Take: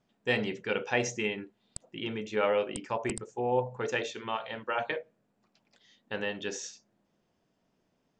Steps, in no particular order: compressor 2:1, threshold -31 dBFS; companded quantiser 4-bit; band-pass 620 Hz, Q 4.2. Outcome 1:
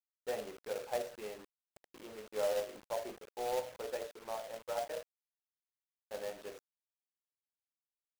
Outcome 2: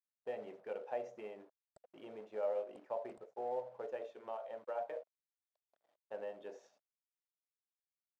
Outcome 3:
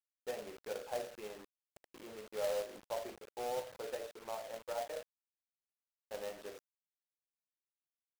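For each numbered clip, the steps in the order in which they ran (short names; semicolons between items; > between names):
band-pass > companded quantiser > compressor; companded quantiser > compressor > band-pass; compressor > band-pass > companded quantiser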